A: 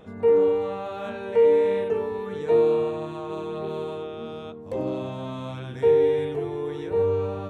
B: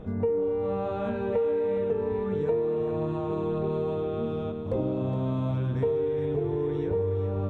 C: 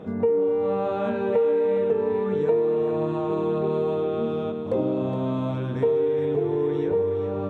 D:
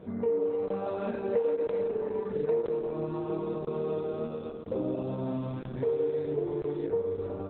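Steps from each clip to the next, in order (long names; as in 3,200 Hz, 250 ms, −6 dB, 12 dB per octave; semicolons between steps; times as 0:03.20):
spectral tilt −3.5 dB per octave; downward compressor 10 to 1, threshold −24 dBFS, peak gain reduction 14 dB; feedback echo with a high-pass in the loop 417 ms, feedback 58%, high-pass 860 Hz, level −7 dB
high-pass filter 180 Hz 12 dB per octave; level +5 dB
flanger 1.1 Hz, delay 1.7 ms, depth 6.8 ms, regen −69%; regular buffer underruns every 0.99 s, samples 1,024, zero, from 0:00.68; level −2 dB; Opus 8 kbit/s 48,000 Hz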